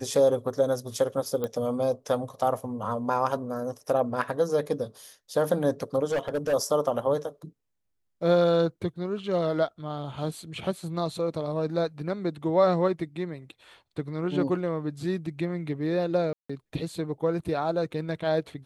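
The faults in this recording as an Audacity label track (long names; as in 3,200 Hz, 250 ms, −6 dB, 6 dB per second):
1.440000	1.440000	click −17 dBFS
6.110000	6.540000	clipping −23 dBFS
16.330000	16.500000	drop-out 165 ms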